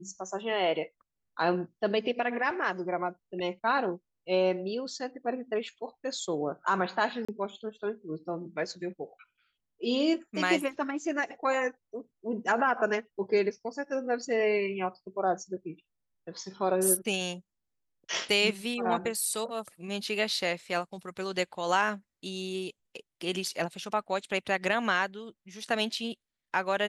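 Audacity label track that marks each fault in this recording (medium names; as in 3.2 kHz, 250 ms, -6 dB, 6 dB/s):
7.250000	7.290000	dropout 35 ms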